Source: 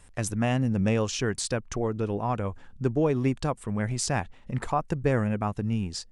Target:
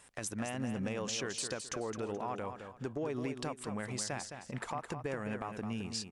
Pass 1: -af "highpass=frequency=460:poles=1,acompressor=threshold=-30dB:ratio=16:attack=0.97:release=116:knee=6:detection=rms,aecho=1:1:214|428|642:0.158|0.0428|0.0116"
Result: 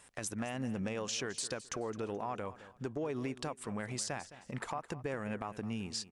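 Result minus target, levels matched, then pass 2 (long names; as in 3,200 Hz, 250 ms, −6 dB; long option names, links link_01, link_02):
echo-to-direct −8 dB
-af "highpass=frequency=460:poles=1,acompressor=threshold=-30dB:ratio=16:attack=0.97:release=116:knee=6:detection=rms,aecho=1:1:214|428|642:0.398|0.107|0.029"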